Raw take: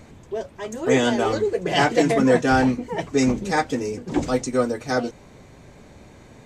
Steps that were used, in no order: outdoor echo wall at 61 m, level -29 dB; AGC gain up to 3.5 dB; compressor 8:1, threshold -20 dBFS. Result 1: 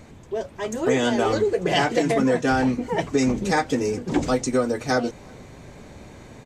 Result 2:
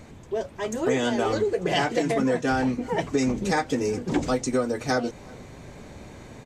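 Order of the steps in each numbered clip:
compressor > AGC > outdoor echo; AGC > outdoor echo > compressor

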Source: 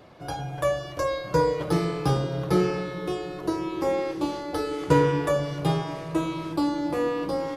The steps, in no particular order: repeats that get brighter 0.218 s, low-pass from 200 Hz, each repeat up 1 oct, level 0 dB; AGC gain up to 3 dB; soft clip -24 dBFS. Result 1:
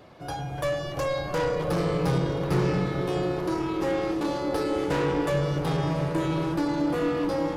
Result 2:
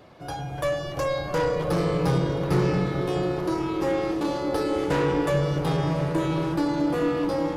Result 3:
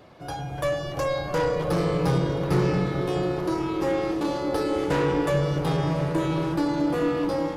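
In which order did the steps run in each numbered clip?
AGC > soft clip > repeats that get brighter; soft clip > AGC > repeats that get brighter; soft clip > repeats that get brighter > AGC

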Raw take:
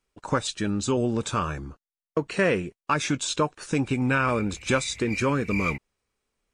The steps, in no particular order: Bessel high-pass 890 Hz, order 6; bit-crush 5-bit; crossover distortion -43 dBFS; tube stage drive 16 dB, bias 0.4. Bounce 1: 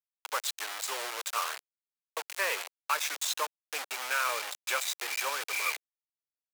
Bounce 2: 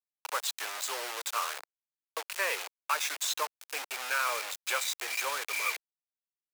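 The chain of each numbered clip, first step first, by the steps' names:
crossover distortion > bit-crush > tube stage > Bessel high-pass; bit-crush > tube stage > crossover distortion > Bessel high-pass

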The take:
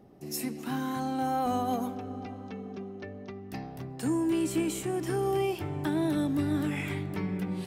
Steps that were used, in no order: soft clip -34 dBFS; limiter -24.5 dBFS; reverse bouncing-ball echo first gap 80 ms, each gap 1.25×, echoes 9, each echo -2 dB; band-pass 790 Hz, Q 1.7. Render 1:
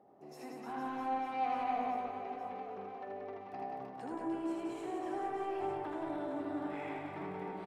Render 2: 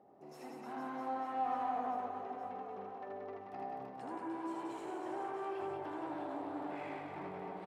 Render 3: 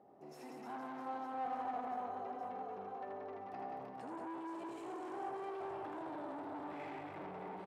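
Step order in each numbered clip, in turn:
limiter > band-pass > soft clip > reverse bouncing-ball echo; soft clip > reverse bouncing-ball echo > limiter > band-pass; limiter > reverse bouncing-ball echo > soft clip > band-pass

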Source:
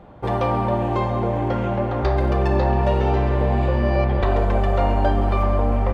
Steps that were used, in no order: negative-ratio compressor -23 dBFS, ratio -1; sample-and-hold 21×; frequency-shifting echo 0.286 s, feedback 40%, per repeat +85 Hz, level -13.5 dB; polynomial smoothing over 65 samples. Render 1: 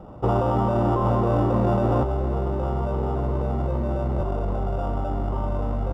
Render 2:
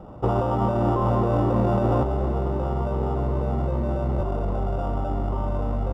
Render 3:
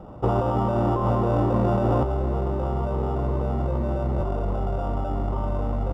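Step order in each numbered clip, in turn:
sample-and-hold > polynomial smoothing > frequency-shifting echo > negative-ratio compressor; negative-ratio compressor > sample-and-hold > frequency-shifting echo > polynomial smoothing; frequency-shifting echo > sample-and-hold > negative-ratio compressor > polynomial smoothing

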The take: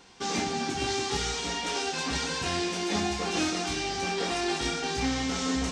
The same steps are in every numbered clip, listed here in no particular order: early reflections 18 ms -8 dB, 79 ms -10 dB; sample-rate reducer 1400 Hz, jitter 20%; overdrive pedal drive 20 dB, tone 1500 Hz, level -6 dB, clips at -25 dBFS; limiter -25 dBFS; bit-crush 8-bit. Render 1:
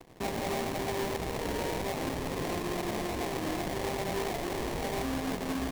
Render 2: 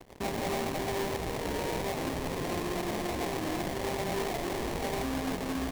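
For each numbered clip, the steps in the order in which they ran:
bit-crush > overdrive pedal > early reflections > limiter > sample-rate reducer; early reflections > bit-crush > overdrive pedal > limiter > sample-rate reducer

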